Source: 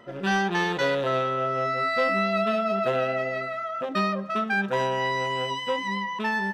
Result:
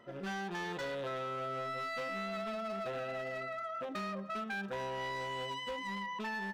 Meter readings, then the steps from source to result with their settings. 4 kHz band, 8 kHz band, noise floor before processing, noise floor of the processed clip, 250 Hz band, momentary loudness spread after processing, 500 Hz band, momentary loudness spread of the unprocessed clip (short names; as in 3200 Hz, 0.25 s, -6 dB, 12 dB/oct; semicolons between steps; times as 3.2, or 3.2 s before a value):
-11.5 dB, n/a, -34 dBFS, -43 dBFS, -13.0 dB, 2 LU, -13.5 dB, 5 LU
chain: compressor 4:1, threshold -26 dBFS, peak gain reduction 6.5 dB; hard clip -26 dBFS, distortion -15 dB; gain -8.5 dB